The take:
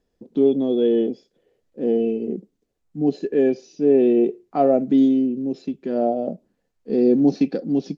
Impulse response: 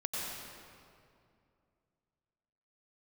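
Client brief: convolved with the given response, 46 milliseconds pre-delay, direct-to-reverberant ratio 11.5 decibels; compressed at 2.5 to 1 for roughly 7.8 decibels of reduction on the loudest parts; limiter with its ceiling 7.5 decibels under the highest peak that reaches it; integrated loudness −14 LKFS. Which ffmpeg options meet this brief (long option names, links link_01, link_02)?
-filter_complex "[0:a]acompressor=threshold=-24dB:ratio=2.5,alimiter=limit=-20.5dB:level=0:latency=1,asplit=2[link_01][link_02];[1:a]atrim=start_sample=2205,adelay=46[link_03];[link_02][link_03]afir=irnorm=-1:irlink=0,volume=-15.5dB[link_04];[link_01][link_04]amix=inputs=2:normalize=0,volume=15.5dB"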